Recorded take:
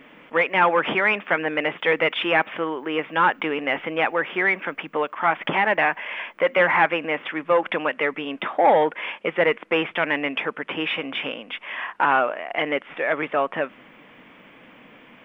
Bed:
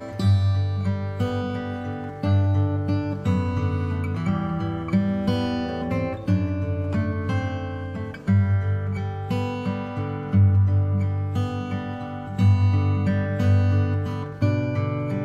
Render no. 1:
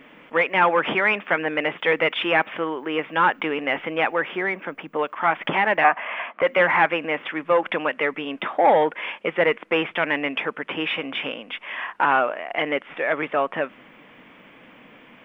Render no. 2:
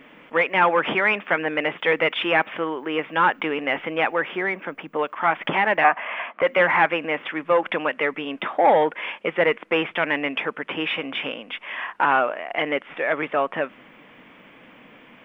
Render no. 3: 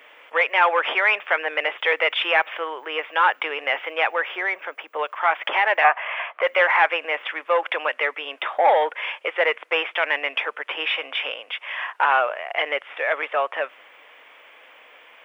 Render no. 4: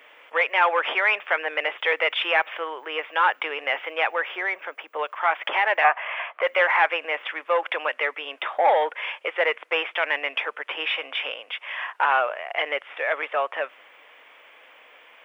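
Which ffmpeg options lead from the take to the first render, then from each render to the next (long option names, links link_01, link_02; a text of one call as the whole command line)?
ffmpeg -i in.wav -filter_complex "[0:a]asettb=1/sr,asplit=3[link_01][link_02][link_03];[link_01]atrim=end=4.364[link_04];[link_02]atrim=start=4.36:end=4.99,asetpts=PTS-STARTPTS,afade=type=in:duration=0.004:curve=qsin,afade=type=out:start_time=0.626:duration=0.004:curve=qsin,equalizer=frequency=2500:width=0.51:gain=-6[link_05];[link_03]atrim=start=4.986[link_06];[link_04][link_05]acrossfade=duration=0.004:curve1=hsin:curve2=qsin[link_07];[link_07][link_06]acrossfade=duration=0.004:curve1=qsin:curve2=hsin,asettb=1/sr,asplit=3[link_08][link_09][link_10];[link_08]atrim=end=5.844[link_11];[link_09]atrim=start=5.84:end=6.42,asetpts=PTS-STARTPTS,afade=type=in:duration=0.004:curve=qsin,afade=type=out:start_time=0.576:duration=0.004:curve=qsin,highpass=frequency=180:width=0.5412,highpass=frequency=180:width=1.3066,equalizer=frequency=240:width_type=q:width=4:gain=5,equalizer=frequency=370:width_type=q:width=4:gain=-4,equalizer=frequency=700:width_type=q:width=4:gain=10,equalizer=frequency=1200:width_type=q:width=4:gain=10,lowpass=frequency=3300:width=0.5412,lowpass=frequency=3300:width=1.3066[link_12];[link_10]atrim=start=6.416[link_13];[link_11][link_12]acrossfade=duration=0.004:curve1=hsin:curve2=qsin[link_14];[link_14][link_13]acrossfade=duration=0.004:curve1=qsin:curve2=hsin" out.wav
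ffmpeg -i in.wav -af anull out.wav
ffmpeg -i in.wav -af "highpass=frequency=490:width=0.5412,highpass=frequency=490:width=1.3066,highshelf=frequency=3500:gain=7" out.wav
ffmpeg -i in.wav -af "volume=-2dB" out.wav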